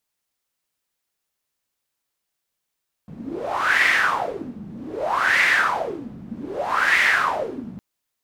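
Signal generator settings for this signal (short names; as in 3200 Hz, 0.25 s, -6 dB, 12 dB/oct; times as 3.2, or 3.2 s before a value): wind-like swept noise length 4.71 s, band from 190 Hz, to 2000 Hz, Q 6.5, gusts 3, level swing 19 dB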